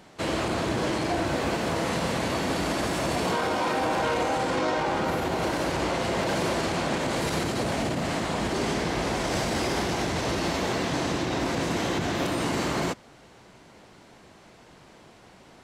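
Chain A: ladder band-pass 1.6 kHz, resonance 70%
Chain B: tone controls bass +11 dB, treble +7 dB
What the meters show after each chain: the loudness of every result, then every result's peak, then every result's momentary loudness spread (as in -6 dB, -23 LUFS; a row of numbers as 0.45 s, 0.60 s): -39.0 LUFS, -23.0 LUFS; -25.0 dBFS, -10.0 dBFS; 4 LU, 1 LU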